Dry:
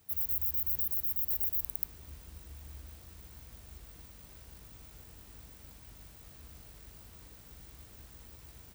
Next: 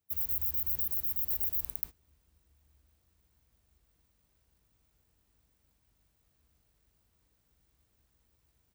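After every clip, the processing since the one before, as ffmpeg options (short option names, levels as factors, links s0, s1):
-af "agate=range=0.1:threshold=0.01:ratio=16:detection=peak"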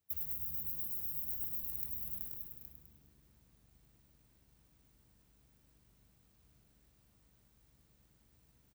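-filter_complex "[0:a]asplit=2[s0][s1];[s1]aecho=0:1:379|577|820:0.422|0.237|0.133[s2];[s0][s2]amix=inputs=2:normalize=0,acompressor=threshold=0.02:ratio=12,asplit=2[s3][s4];[s4]asplit=7[s5][s6][s7][s8][s9][s10][s11];[s5]adelay=102,afreqshift=73,volume=0.562[s12];[s6]adelay=204,afreqshift=146,volume=0.299[s13];[s7]adelay=306,afreqshift=219,volume=0.158[s14];[s8]adelay=408,afreqshift=292,volume=0.0841[s15];[s9]adelay=510,afreqshift=365,volume=0.0442[s16];[s10]adelay=612,afreqshift=438,volume=0.0234[s17];[s11]adelay=714,afreqshift=511,volume=0.0124[s18];[s12][s13][s14][s15][s16][s17][s18]amix=inputs=7:normalize=0[s19];[s3][s19]amix=inputs=2:normalize=0"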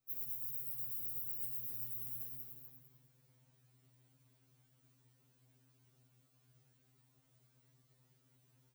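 -af "afftfilt=real='re*2.45*eq(mod(b,6),0)':imag='im*2.45*eq(mod(b,6),0)':win_size=2048:overlap=0.75"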